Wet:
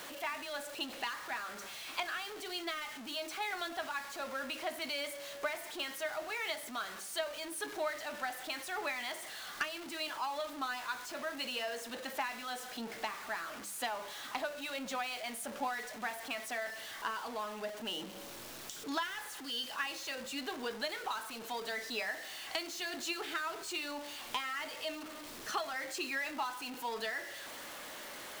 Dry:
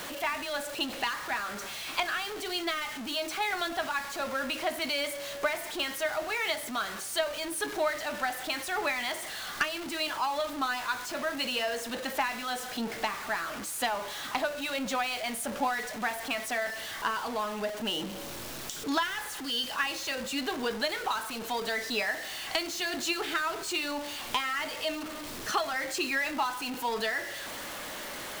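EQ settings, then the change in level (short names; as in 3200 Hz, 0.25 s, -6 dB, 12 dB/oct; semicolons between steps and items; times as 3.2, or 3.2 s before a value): low shelf 150 Hz -7 dB; notches 50/100/150/200 Hz; -7.0 dB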